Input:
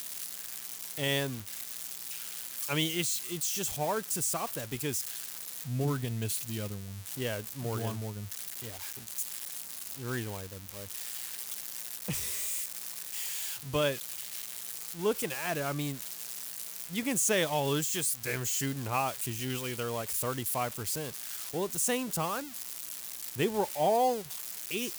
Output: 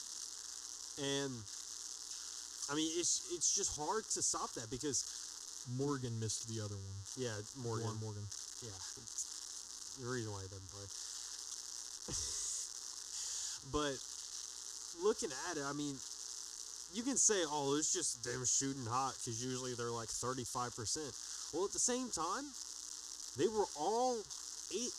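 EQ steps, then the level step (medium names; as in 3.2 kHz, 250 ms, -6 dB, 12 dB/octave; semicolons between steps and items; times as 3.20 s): four-pole ladder low-pass 6.9 kHz, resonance 55%; bass shelf 130 Hz +6.5 dB; static phaser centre 630 Hz, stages 6; +5.5 dB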